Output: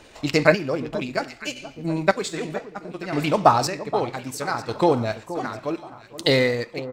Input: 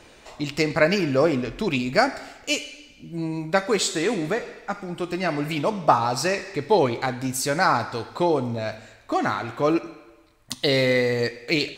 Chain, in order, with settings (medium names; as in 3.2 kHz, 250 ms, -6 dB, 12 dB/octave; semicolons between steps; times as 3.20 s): fade out at the end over 1.14 s; in parallel at -9 dB: crossover distortion -35 dBFS; on the sum: tempo 1.7×; square tremolo 0.64 Hz, depth 65%, duty 35%; echo whose repeats swap between lows and highs 474 ms, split 1.2 kHz, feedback 64%, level -13 dB; trim +1.5 dB